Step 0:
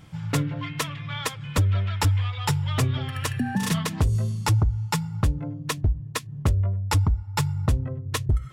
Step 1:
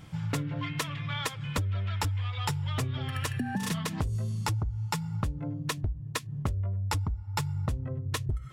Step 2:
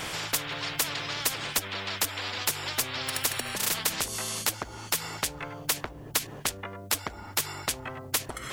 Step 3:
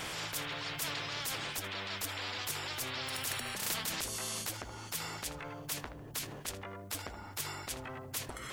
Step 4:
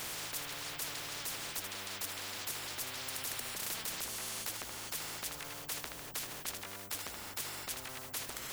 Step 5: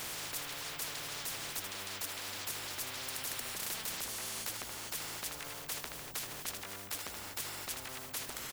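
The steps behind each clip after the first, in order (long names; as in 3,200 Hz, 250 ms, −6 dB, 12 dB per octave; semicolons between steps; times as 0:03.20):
downward compressor, threshold −28 dBFS, peak gain reduction 10.5 dB
every bin compressed towards the loudest bin 10 to 1; level +8 dB
tape delay 78 ms, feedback 46%, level −15 dB, low-pass 2,500 Hz; transient designer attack −10 dB, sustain +2 dB; level −5 dB
every bin compressed towards the loudest bin 4 to 1
single-tap delay 237 ms −12.5 dB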